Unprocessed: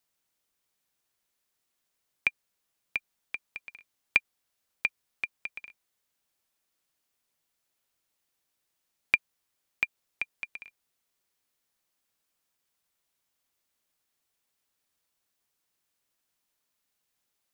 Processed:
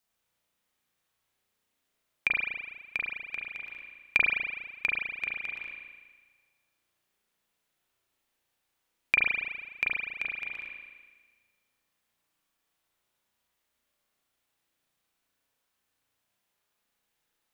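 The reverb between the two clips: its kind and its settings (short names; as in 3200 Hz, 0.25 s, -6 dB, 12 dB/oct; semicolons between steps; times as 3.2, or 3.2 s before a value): spring tank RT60 1.4 s, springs 34 ms, chirp 20 ms, DRR -4 dB; gain -1.5 dB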